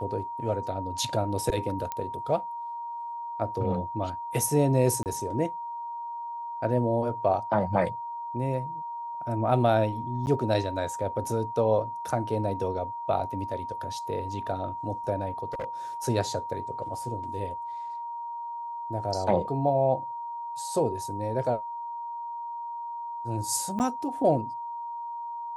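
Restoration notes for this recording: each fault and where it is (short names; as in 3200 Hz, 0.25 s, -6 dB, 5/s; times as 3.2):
tone 940 Hz -33 dBFS
1.92 pop -17 dBFS
5.03–5.06 gap 28 ms
10.26–10.27 gap 9.7 ms
15.53–15.65 clipped -28.5 dBFS
23.79–23.8 gap 9.1 ms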